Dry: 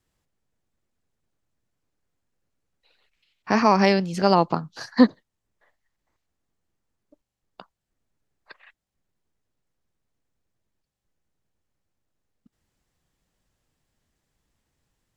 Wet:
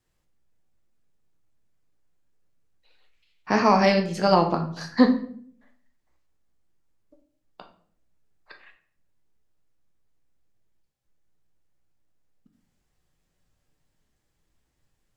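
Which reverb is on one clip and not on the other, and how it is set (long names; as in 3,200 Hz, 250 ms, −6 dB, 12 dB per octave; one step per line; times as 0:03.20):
rectangular room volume 67 cubic metres, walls mixed, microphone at 0.49 metres
level −2 dB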